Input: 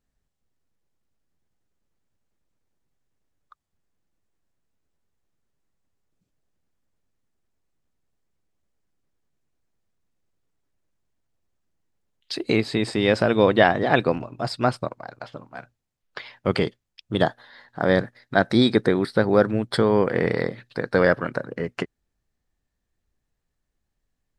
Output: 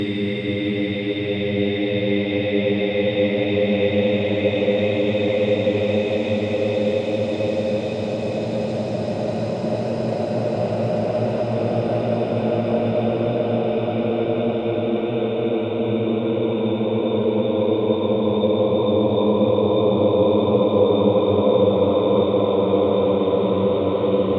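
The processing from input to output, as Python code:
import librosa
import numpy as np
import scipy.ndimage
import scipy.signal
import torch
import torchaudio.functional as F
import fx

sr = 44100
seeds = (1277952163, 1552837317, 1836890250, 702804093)

y = fx.env_flanger(x, sr, rest_ms=3.1, full_db=-15.5)
y = fx.paulstretch(y, sr, seeds[0], factor=48.0, window_s=0.25, from_s=13.0)
y = fx.high_shelf(y, sr, hz=7200.0, db=-11.0)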